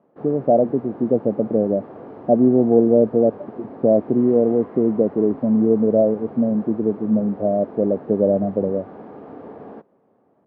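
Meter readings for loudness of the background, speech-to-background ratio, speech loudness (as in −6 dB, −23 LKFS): −38.5 LKFS, 19.5 dB, −19.0 LKFS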